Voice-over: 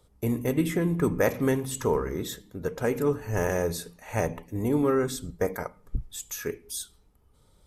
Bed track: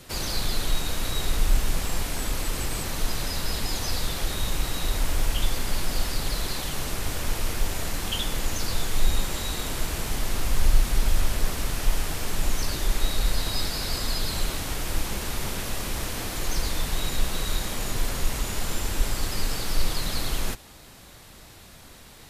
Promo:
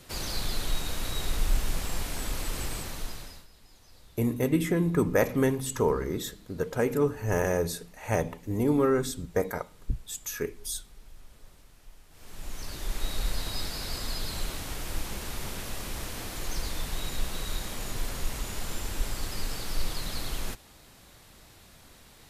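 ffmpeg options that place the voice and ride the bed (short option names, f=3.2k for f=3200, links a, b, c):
-filter_complex "[0:a]adelay=3950,volume=0dB[a];[1:a]volume=18dB,afade=t=out:st=2.67:d=0.8:silence=0.0630957,afade=t=in:st=12.1:d=1.06:silence=0.0749894[b];[a][b]amix=inputs=2:normalize=0"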